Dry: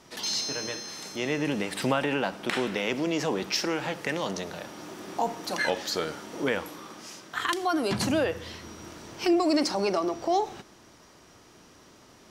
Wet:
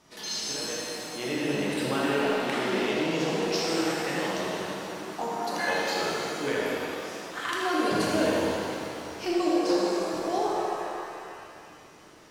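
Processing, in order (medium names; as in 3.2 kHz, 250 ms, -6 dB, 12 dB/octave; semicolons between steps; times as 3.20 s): 9.48–10.19 s: compressor with a negative ratio -34 dBFS, ratio -1; tape echo 79 ms, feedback 76%, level -4 dB, low-pass 4.8 kHz; pitch-shifted reverb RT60 2.4 s, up +7 st, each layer -8 dB, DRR -3 dB; trim -6.5 dB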